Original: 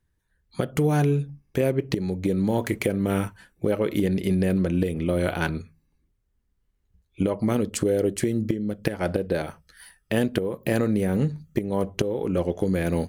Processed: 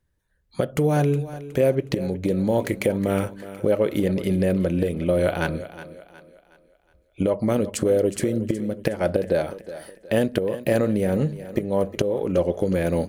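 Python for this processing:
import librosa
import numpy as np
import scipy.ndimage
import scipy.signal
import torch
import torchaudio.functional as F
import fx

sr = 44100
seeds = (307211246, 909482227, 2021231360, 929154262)

p1 = fx.peak_eq(x, sr, hz=570.0, db=7.5, octaves=0.43)
y = p1 + fx.echo_thinned(p1, sr, ms=366, feedback_pct=41, hz=170.0, wet_db=-14, dry=0)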